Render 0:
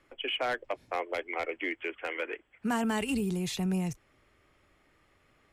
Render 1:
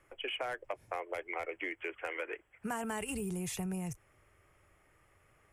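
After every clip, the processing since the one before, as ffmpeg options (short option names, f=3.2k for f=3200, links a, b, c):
-af "equalizer=f=100:t=o:w=0.67:g=4,equalizer=f=250:t=o:w=0.67:g=-9,equalizer=f=4k:t=o:w=0.67:g=-12,equalizer=f=10k:t=o:w=0.67:g=7,acompressor=threshold=-34dB:ratio=6"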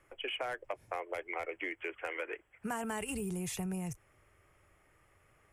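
-af anull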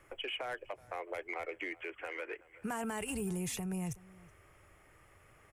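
-filter_complex "[0:a]asplit=2[a][b];[b]asoftclip=type=tanh:threshold=-38.5dB,volume=-9.5dB[c];[a][c]amix=inputs=2:normalize=0,asplit=2[d][e];[e]adelay=373.2,volume=-24dB,highshelf=f=4k:g=-8.4[f];[d][f]amix=inputs=2:normalize=0,alimiter=level_in=8dB:limit=-24dB:level=0:latency=1:release=393,volume=-8dB,volume=2.5dB"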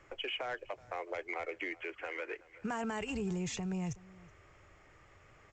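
-af "volume=1dB" -ar 16000 -c:a pcm_mulaw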